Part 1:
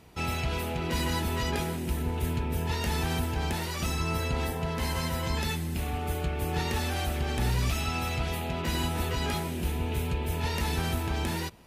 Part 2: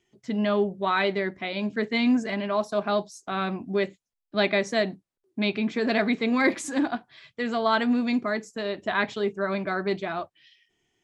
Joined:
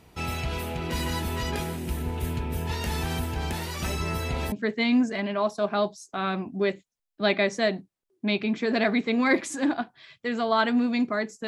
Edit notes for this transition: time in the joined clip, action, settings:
part 1
3.84 add part 2 from 0.98 s 0.68 s -13 dB
4.52 switch to part 2 from 1.66 s

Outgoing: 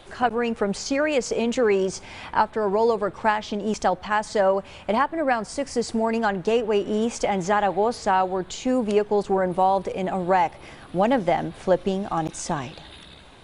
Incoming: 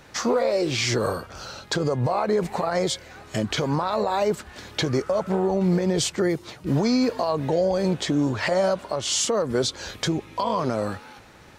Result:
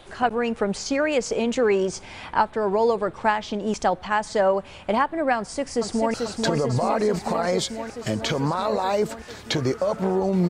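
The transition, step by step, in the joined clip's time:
outgoing
5.37–6.14 echo throw 0.44 s, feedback 80%, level -4 dB
6.14 switch to incoming from 1.42 s

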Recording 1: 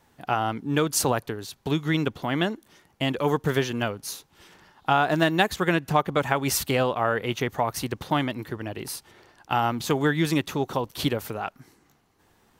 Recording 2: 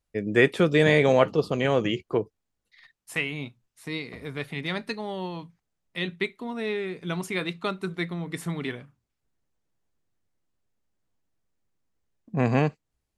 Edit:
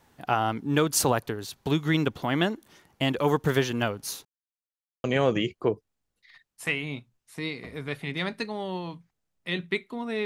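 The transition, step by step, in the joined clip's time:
recording 1
4.25–5.04 mute
5.04 switch to recording 2 from 1.53 s

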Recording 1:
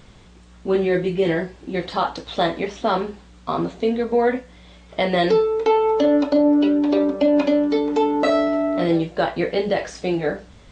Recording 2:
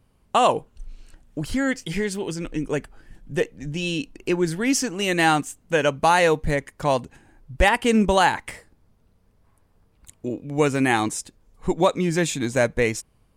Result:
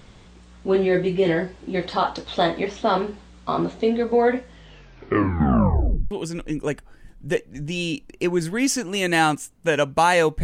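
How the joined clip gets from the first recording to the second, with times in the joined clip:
recording 1
4.46 tape stop 1.65 s
6.11 switch to recording 2 from 2.17 s

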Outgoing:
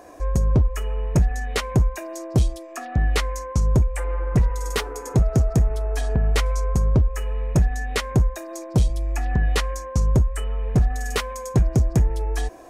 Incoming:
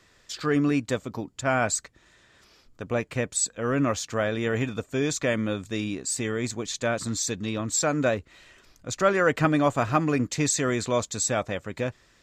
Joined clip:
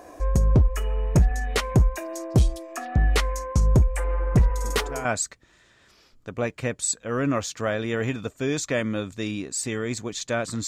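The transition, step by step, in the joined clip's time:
outgoing
4.59 add incoming from 1.12 s 0.46 s -10.5 dB
5.05 switch to incoming from 1.58 s

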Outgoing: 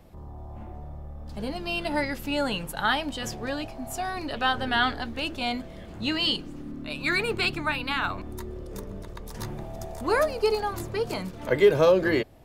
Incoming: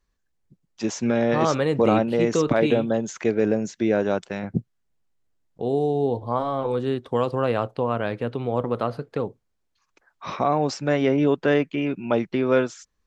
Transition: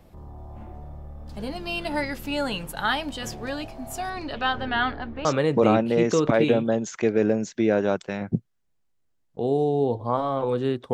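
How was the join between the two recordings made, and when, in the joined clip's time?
outgoing
4.09–5.25 LPF 7200 Hz -> 1600 Hz
5.25 switch to incoming from 1.47 s

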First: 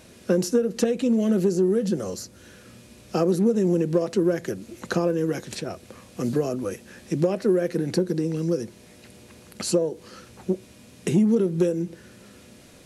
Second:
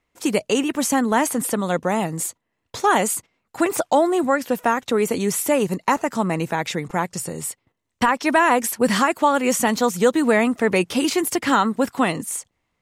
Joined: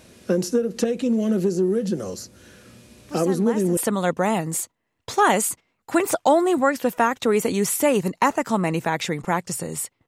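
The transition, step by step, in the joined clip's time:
first
3.07 add second from 0.73 s 0.70 s -14 dB
3.77 switch to second from 1.43 s

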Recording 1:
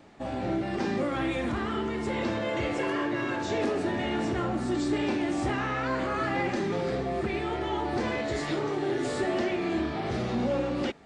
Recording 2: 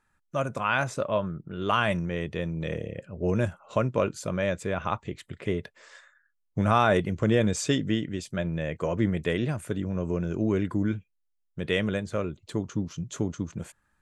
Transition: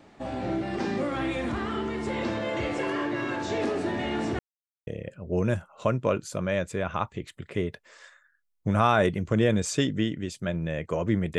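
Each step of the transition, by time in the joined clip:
recording 1
4.39–4.87 mute
4.87 switch to recording 2 from 2.78 s

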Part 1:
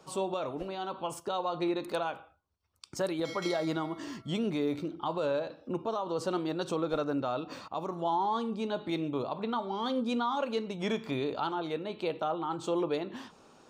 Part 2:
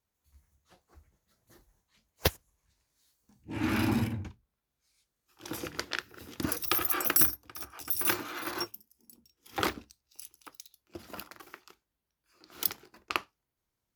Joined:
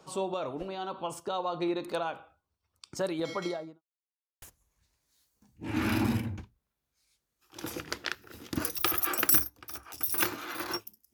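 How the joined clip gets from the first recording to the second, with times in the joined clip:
part 1
3.34–3.82 studio fade out
3.82–4.42 mute
4.42 switch to part 2 from 2.29 s

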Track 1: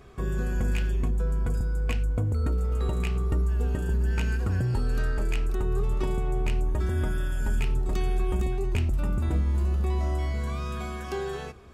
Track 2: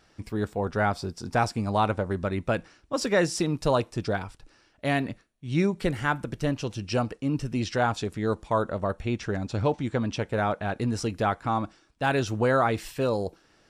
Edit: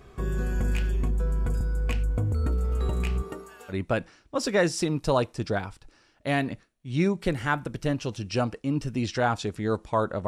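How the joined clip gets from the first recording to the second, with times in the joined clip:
track 1
3.21–3.74 HPF 210 Hz -> 1400 Hz
3.71 switch to track 2 from 2.29 s, crossfade 0.06 s

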